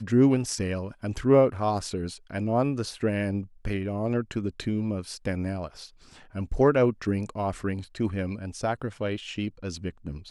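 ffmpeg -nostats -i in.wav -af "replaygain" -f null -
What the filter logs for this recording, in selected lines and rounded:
track_gain = +6.4 dB
track_peak = 0.258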